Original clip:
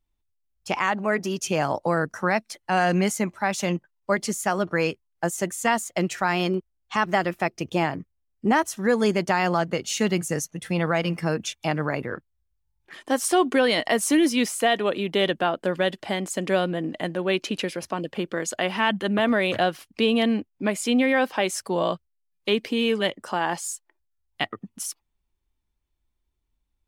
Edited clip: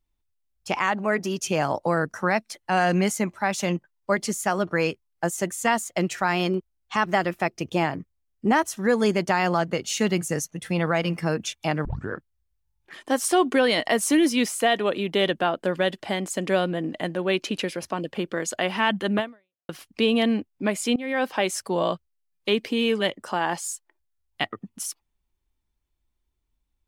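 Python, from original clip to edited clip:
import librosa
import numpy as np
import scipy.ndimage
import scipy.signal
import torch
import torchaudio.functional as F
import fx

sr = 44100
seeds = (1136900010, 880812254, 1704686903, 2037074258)

y = fx.edit(x, sr, fx.tape_start(start_s=11.85, length_s=0.26),
    fx.fade_out_span(start_s=19.19, length_s=0.5, curve='exp'),
    fx.fade_in_from(start_s=20.96, length_s=0.34, floor_db=-23.0), tone=tone)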